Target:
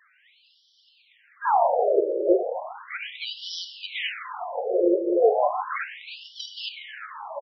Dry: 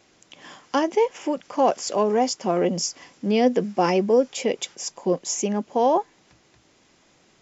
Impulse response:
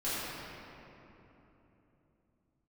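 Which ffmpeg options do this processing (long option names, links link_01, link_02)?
-filter_complex "[0:a]areverse,aeval=exprs='val(0)+0.00562*sin(2*PI*650*n/s)':channel_layout=same,asplit=2[link_01][link_02];[link_02]acrusher=samples=35:mix=1:aa=0.000001:lfo=1:lforange=35:lforate=1.9,volume=-4.5dB[link_03];[link_01][link_03]amix=inputs=2:normalize=0,highpass=120,lowpass=6400,asplit=2[link_04][link_05];[link_05]adelay=368,lowpass=frequency=1600:poles=1,volume=-9dB,asplit=2[link_06][link_07];[link_07]adelay=368,lowpass=frequency=1600:poles=1,volume=0.42,asplit=2[link_08][link_09];[link_09]adelay=368,lowpass=frequency=1600:poles=1,volume=0.42,asplit=2[link_10][link_11];[link_11]adelay=368,lowpass=frequency=1600:poles=1,volume=0.42,asplit=2[link_12][link_13];[link_13]adelay=368,lowpass=frequency=1600:poles=1,volume=0.42[link_14];[link_04][link_06][link_08][link_10][link_12][link_14]amix=inputs=6:normalize=0,asplit=2[link_15][link_16];[1:a]atrim=start_sample=2205[link_17];[link_16][link_17]afir=irnorm=-1:irlink=0,volume=-10dB[link_18];[link_15][link_18]amix=inputs=2:normalize=0,afftfilt=real='re*between(b*sr/1024,440*pow(4200/440,0.5+0.5*sin(2*PI*0.35*pts/sr))/1.41,440*pow(4200/440,0.5+0.5*sin(2*PI*0.35*pts/sr))*1.41)':imag='im*between(b*sr/1024,440*pow(4200/440,0.5+0.5*sin(2*PI*0.35*pts/sr))/1.41,440*pow(4200/440,0.5+0.5*sin(2*PI*0.35*pts/sr))*1.41)':win_size=1024:overlap=0.75"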